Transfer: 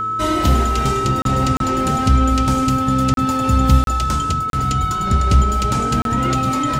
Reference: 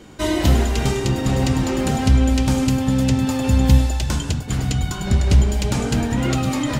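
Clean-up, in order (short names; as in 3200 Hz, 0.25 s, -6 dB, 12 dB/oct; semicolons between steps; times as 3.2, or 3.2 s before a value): de-hum 110.7 Hz, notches 4; notch 1300 Hz, Q 30; interpolate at 1.22/1.57/3.14/3.84/4.5/6.02, 32 ms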